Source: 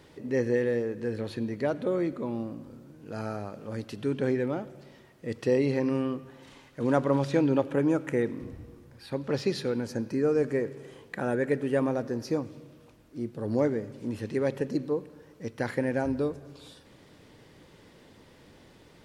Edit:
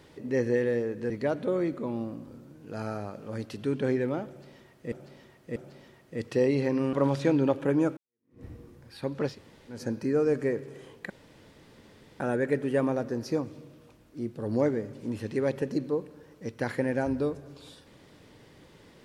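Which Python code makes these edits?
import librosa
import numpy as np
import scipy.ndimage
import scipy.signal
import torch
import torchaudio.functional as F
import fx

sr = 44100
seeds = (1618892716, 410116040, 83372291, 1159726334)

y = fx.edit(x, sr, fx.cut(start_s=1.1, length_s=0.39),
    fx.repeat(start_s=4.67, length_s=0.64, count=3),
    fx.cut(start_s=6.04, length_s=0.98),
    fx.fade_in_span(start_s=8.06, length_s=0.47, curve='exp'),
    fx.room_tone_fill(start_s=9.4, length_s=0.44, crossfade_s=0.16),
    fx.insert_room_tone(at_s=11.19, length_s=1.1), tone=tone)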